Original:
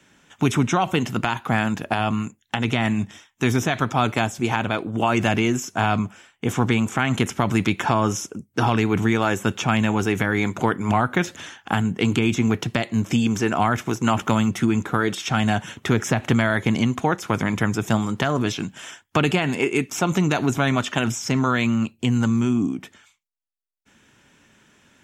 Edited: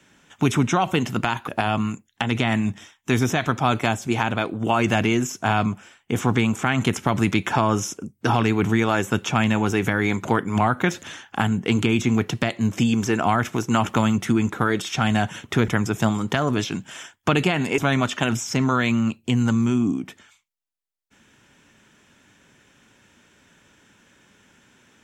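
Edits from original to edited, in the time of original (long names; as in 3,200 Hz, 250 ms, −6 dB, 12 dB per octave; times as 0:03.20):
0:01.48–0:01.81: remove
0:16.01–0:17.56: remove
0:19.66–0:20.53: remove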